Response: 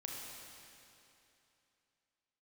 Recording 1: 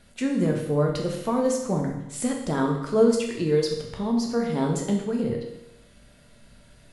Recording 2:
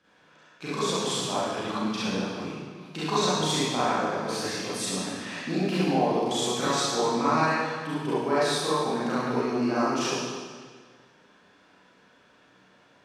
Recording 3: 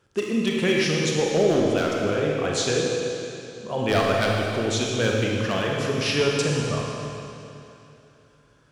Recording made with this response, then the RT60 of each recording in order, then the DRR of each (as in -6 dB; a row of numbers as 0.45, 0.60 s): 3; 0.90, 1.7, 2.9 s; 0.5, -11.5, -2.0 dB